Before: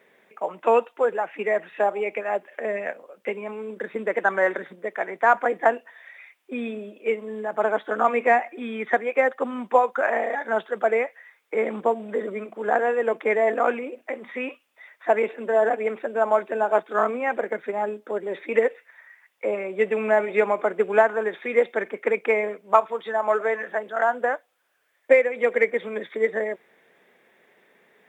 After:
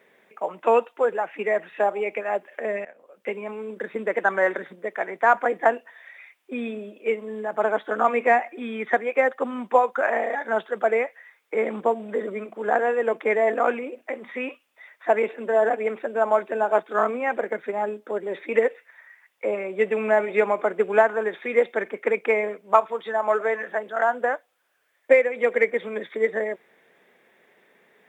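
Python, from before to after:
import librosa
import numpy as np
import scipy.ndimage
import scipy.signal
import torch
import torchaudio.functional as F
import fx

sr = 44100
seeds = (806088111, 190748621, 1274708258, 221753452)

y = fx.edit(x, sr, fx.fade_in_from(start_s=2.85, length_s=0.5, floor_db=-21.5), tone=tone)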